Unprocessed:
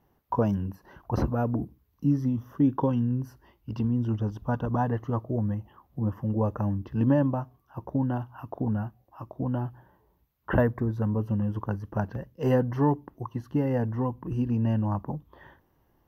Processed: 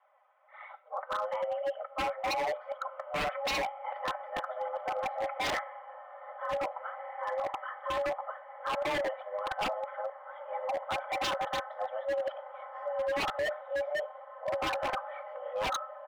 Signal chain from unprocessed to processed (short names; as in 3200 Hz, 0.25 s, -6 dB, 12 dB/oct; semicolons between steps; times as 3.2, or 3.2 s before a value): whole clip reversed; comb 4.1 ms, depth 95%; in parallel at +1 dB: compressor 20:1, threshold -34 dBFS, peak gain reduction 21.5 dB; on the sum: mistuned SSB +310 Hz 290–2800 Hz; flange 1.7 Hz, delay 0.5 ms, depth 5.8 ms, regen +26%; diffused feedback echo 1.771 s, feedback 59%, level -15 dB; on a send at -9 dB: reverb RT60 0.65 s, pre-delay 3 ms; on the sum: wavefolder -26 dBFS; mismatched tape noise reduction decoder only